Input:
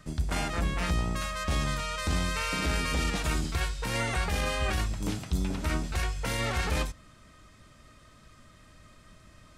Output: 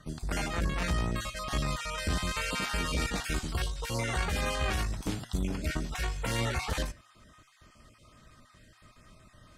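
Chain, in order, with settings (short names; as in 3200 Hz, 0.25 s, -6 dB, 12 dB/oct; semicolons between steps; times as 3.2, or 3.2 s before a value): random spectral dropouts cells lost 21%; flange 1.2 Hz, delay 7.6 ms, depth 1.4 ms, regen +88%; added harmonics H 2 -13 dB, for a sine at -21.5 dBFS; gain +3.5 dB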